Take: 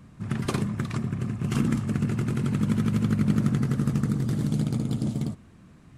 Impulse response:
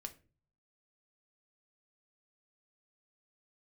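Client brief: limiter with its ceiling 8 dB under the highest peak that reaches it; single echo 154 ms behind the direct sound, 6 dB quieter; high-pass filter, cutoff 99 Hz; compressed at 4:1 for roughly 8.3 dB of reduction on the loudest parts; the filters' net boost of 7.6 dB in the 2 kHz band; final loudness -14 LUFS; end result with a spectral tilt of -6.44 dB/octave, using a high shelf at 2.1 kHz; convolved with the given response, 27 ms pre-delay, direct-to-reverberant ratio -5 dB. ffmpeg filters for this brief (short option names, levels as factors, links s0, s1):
-filter_complex "[0:a]highpass=99,equalizer=f=2000:t=o:g=5,highshelf=f=2100:g=8,acompressor=threshold=0.0355:ratio=4,alimiter=level_in=1.06:limit=0.0631:level=0:latency=1,volume=0.944,aecho=1:1:154:0.501,asplit=2[s0][s1];[1:a]atrim=start_sample=2205,adelay=27[s2];[s1][s2]afir=irnorm=-1:irlink=0,volume=2.82[s3];[s0][s3]amix=inputs=2:normalize=0,volume=4.47"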